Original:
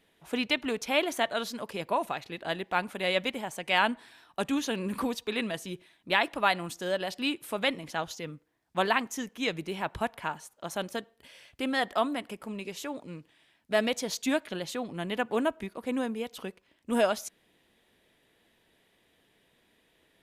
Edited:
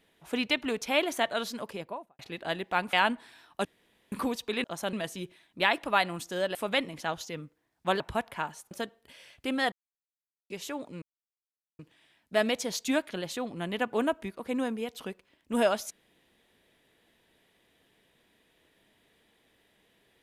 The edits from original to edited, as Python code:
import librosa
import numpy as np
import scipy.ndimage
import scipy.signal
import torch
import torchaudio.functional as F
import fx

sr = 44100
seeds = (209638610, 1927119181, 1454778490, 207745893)

y = fx.studio_fade_out(x, sr, start_s=1.58, length_s=0.61)
y = fx.edit(y, sr, fx.cut(start_s=2.93, length_s=0.79),
    fx.room_tone_fill(start_s=4.44, length_s=0.47),
    fx.cut(start_s=7.05, length_s=0.4),
    fx.cut(start_s=8.9, length_s=0.96),
    fx.move(start_s=10.57, length_s=0.29, to_s=5.43),
    fx.silence(start_s=11.87, length_s=0.78),
    fx.insert_silence(at_s=13.17, length_s=0.77), tone=tone)